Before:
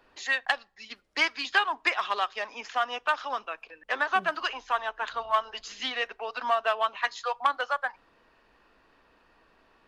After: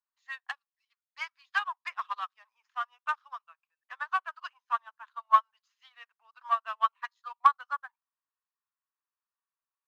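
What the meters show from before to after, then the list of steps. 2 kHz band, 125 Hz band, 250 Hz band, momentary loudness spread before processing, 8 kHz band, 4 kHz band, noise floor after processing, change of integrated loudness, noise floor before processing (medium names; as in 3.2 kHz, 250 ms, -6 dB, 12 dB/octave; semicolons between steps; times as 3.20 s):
-9.0 dB, no reading, under -40 dB, 9 LU, under -15 dB, -14.0 dB, under -85 dBFS, -2.5 dB, -64 dBFS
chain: waveshaping leveller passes 1; ladder high-pass 940 Hz, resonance 55%; upward expansion 2.5:1, over -41 dBFS; trim +4.5 dB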